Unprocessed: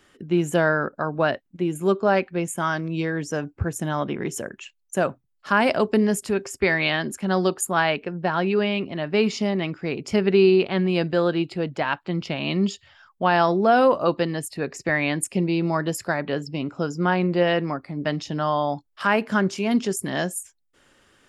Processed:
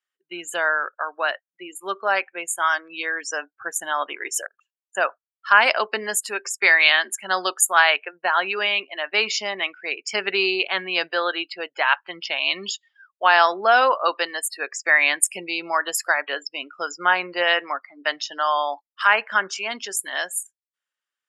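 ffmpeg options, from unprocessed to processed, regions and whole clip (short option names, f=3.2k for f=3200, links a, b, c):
-filter_complex "[0:a]asettb=1/sr,asplit=3[a][b][c];[a]atrim=end=4.464[d];[b]atrim=start=4.46:end=4.95,asetpts=PTS-STARTPTS,afade=t=in:d=0.004:c=qsin,afade=t=out:st=0.486:d=0.004:c=qsin,acompressor=threshold=-41dB:ratio=12:attack=3.2:release=140:knee=1:detection=peak,highshelf=f=1.6k:t=q:w=3:g=-9.5[e];[c]atrim=start=4.946[f];[d][e]acrossfade=d=0.004:c1=hsin:c2=qsin[g];[g][f]acrossfade=d=0.004:c1=qsin:c2=hsin,highpass=1.1k,afftdn=nr=31:nf=-41,dynaudnorm=f=460:g=11:m=5dB,volume=4dB"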